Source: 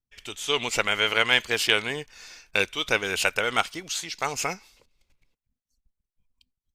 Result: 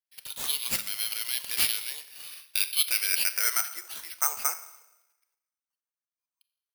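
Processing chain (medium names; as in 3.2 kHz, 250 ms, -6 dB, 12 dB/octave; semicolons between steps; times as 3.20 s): single-diode clipper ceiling -7.5 dBFS; Chebyshev high-pass 330 Hz, order 5; peak limiter -13.5 dBFS, peak gain reduction 8 dB; Schroeder reverb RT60 1 s, combs from 28 ms, DRR 12 dB; band-pass sweep 4.7 kHz -> 1.3 kHz, 2.05–3.93 s; careless resampling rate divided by 6×, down none, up zero stuff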